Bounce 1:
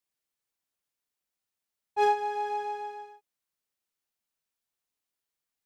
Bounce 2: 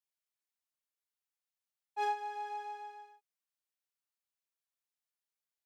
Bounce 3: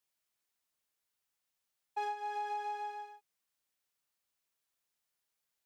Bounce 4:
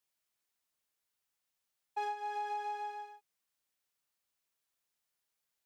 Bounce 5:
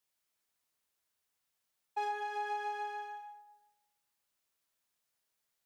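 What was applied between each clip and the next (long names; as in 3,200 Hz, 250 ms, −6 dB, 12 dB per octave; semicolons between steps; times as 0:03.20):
high-pass filter 600 Hz 12 dB per octave; level −7.5 dB
downward compressor 6 to 1, threshold −42 dBFS, peak gain reduction 12 dB; level +7 dB
no processing that can be heard
convolution reverb RT60 1.0 s, pre-delay 123 ms, DRR 4.5 dB; level +1 dB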